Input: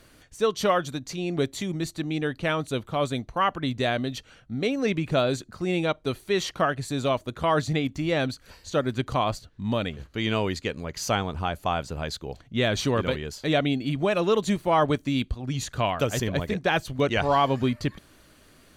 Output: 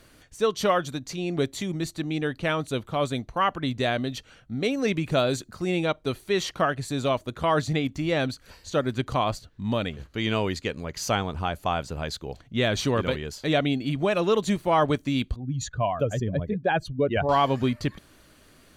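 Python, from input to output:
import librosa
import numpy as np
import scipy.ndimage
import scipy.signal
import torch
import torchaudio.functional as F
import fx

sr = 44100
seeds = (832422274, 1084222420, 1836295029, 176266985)

y = fx.high_shelf(x, sr, hz=6500.0, db=6.0, at=(4.64, 5.7))
y = fx.spec_expand(y, sr, power=1.8, at=(15.36, 17.29))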